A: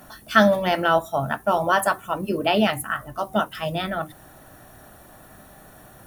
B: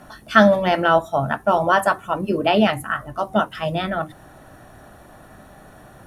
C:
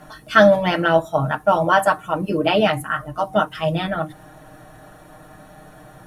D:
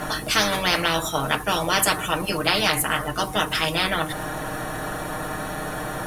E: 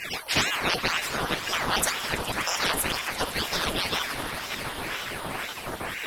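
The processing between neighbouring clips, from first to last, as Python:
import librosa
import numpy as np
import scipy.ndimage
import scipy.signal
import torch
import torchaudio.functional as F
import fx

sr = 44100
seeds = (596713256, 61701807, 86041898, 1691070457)

y1 = scipy.signal.sosfilt(scipy.signal.butter(2, 11000.0, 'lowpass', fs=sr, output='sos'), x)
y1 = fx.high_shelf(y1, sr, hz=3700.0, db=-7.0)
y1 = y1 * librosa.db_to_amplitude(3.5)
y2 = y1 + 0.75 * np.pad(y1, (int(6.5 * sr / 1000.0), 0))[:len(y1)]
y2 = y2 * librosa.db_to_amplitude(-1.0)
y3 = fx.spectral_comp(y2, sr, ratio=4.0)
y3 = y3 * librosa.db_to_amplitude(-3.0)
y4 = fx.spec_dropout(y3, sr, seeds[0], share_pct=39)
y4 = fx.echo_swell(y4, sr, ms=82, loudest=8, wet_db=-18.0)
y4 = fx.ring_lfo(y4, sr, carrier_hz=1200.0, swing_pct=90, hz=2.0)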